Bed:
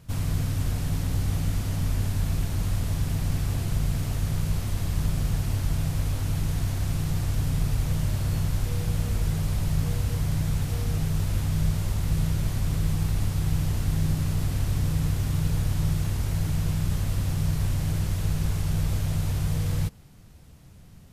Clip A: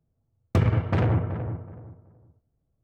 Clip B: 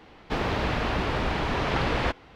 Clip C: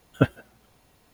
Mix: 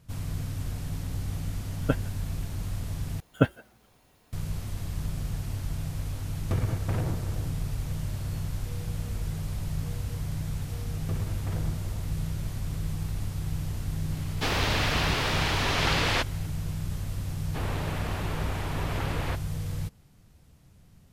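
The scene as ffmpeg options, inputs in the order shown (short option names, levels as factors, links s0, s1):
-filter_complex "[3:a]asplit=2[s0][s1];[1:a]asplit=2[s2][s3];[2:a]asplit=2[s4][s5];[0:a]volume=0.473[s6];[s4]crystalizer=i=6.5:c=0[s7];[s6]asplit=2[s8][s9];[s8]atrim=end=3.204[s10];[s1]atrim=end=1.13,asetpts=PTS-STARTPTS,volume=0.841[s11];[s9]atrim=start=4.326[s12];[s0]atrim=end=1.13,asetpts=PTS-STARTPTS,volume=0.501,afade=t=in:d=0.004:c=hsin,afade=t=out:st=1.126:d=0.004:c=hsin,adelay=1680[s13];[s2]atrim=end=2.83,asetpts=PTS-STARTPTS,volume=0.376,afade=t=in:d=0.004:c=hsin,afade=t=out:st=2.826:d=0.004:c=hsin,adelay=5960[s14];[s3]atrim=end=2.83,asetpts=PTS-STARTPTS,volume=0.178,afade=t=in:d=0.004:c=hsin,afade=t=out:st=2.826:d=0.004:c=hsin,adelay=10540[s15];[s7]atrim=end=2.35,asetpts=PTS-STARTPTS,volume=0.631,afade=t=in:d=0.004:c=hsin,afade=t=out:st=2.346:d=0.004:c=hsin,adelay=14110[s16];[s5]atrim=end=2.35,asetpts=PTS-STARTPTS,volume=0.398,afade=t=in:d=0.004:c=hsin,afade=t=out:st=2.346:d=0.004:c=hsin,adelay=17240[s17];[s10][s11]acrossfade=d=0.004:c1=hsin:c2=hsin[s18];[s18][s12]acrossfade=d=0.004:c1=hsin:c2=hsin[s19];[s19][s13][s14][s15][s16][s17]amix=inputs=6:normalize=0"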